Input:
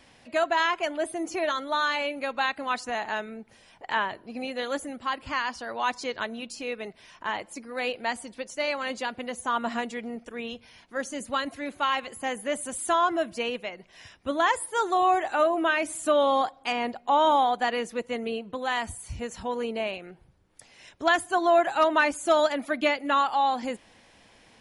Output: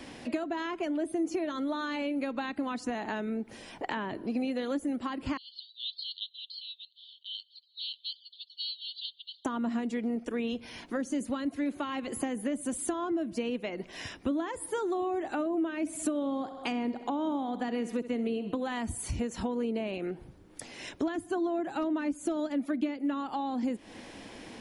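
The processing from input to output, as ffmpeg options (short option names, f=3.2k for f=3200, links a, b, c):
-filter_complex "[0:a]asettb=1/sr,asplit=3[a][b][c];[a]atrim=end=5.374[d];[b]atrim=start=5.37:end=9.45,asetpts=PTS-STARTPTS,afade=t=in:d=0.004:c=qsin,afade=t=out:st=4.076:d=0.004:c=qsin,asuperpass=centerf=3700:order=12:qfactor=2.6[e];[c]atrim=start=9.446[f];[d][e]acrossfade=d=0.004:c1=hsin:c2=qsin[g];[g][f]acrossfade=d=0.004:c1=qsin:c2=hsin,asettb=1/sr,asplit=3[h][i][j];[h]atrim=end=15.804[k];[i]atrim=start=15.8:end=18.72,asetpts=PTS-STARTPTS,afade=t=in:d=0.004:c=qsin,afade=t=out:st=2.916:d=0.004:c=qsin,aecho=1:1:65|130|195|260|325:0.158|0.084|0.0445|0.0236|0.0125,atrim=end_sample=128772[l];[j]atrim=start=18.716[m];[k][l]acrossfade=d=0.004:c1=hsin:c2=qsin[n];[n][m]acrossfade=d=0.004:c1=qsin:c2=hsin,acrossover=split=310[o][p];[p]acompressor=threshold=-36dB:ratio=5[q];[o][q]amix=inputs=2:normalize=0,equalizer=f=300:t=o:w=1.2:g=10.5,acompressor=threshold=-39dB:ratio=3,volume=7dB"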